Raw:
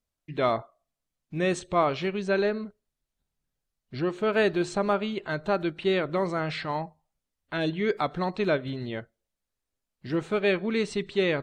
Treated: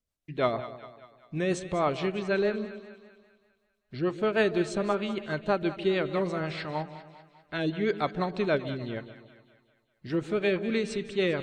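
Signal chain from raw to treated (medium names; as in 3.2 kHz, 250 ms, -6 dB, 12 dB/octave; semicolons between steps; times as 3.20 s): rotary cabinet horn 6.3 Hz; two-band feedback delay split 700 Hz, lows 145 ms, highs 198 ms, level -13 dB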